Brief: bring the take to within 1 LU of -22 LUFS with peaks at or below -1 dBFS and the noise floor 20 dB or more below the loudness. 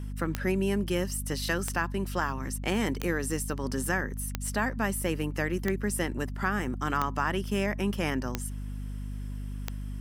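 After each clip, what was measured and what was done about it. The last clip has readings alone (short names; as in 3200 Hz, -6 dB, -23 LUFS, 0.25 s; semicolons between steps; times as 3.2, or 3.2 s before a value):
clicks 8; hum 50 Hz; harmonics up to 250 Hz; hum level -33 dBFS; loudness -31.0 LUFS; peak -10.0 dBFS; loudness target -22.0 LUFS
-> de-click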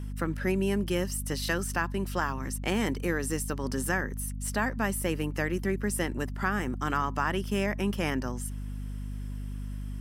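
clicks 0; hum 50 Hz; harmonics up to 250 Hz; hum level -33 dBFS
-> de-hum 50 Hz, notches 5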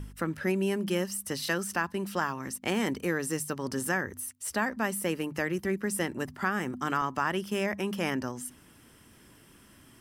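hum none; loudness -31.0 LUFS; peak -13.5 dBFS; loudness target -22.0 LUFS
-> gain +9 dB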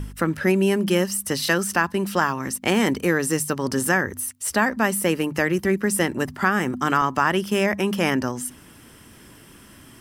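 loudness -22.0 LUFS; peak -4.5 dBFS; noise floor -48 dBFS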